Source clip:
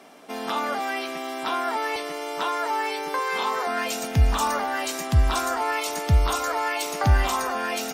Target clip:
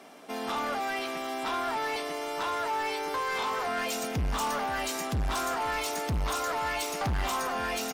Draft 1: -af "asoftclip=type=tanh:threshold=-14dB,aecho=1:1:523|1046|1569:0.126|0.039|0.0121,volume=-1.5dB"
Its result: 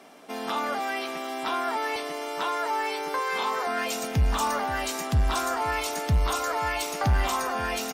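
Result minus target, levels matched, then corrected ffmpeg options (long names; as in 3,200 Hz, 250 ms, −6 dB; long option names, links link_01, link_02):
soft clipping: distortion −10 dB
-af "asoftclip=type=tanh:threshold=-24.5dB,aecho=1:1:523|1046|1569:0.126|0.039|0.0121,volume=-1.5dB"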